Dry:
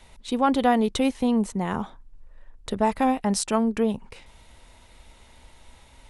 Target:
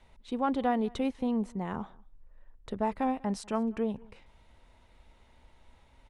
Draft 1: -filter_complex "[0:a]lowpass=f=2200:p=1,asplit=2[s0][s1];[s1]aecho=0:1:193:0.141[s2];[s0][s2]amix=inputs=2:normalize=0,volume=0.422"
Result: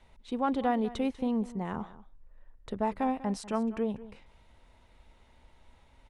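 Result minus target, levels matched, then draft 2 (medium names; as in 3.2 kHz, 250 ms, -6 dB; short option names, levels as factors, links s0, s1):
echo-to-direct +8.5 dB
-filter_complex "[0:a]lowpass=f=2200:p=1,asplit=2[s0][s1];[s1]aecho=0:1:193:0.0531[s2];[s0][s2]amix=inputs=2:normalize=0,volume=0.422"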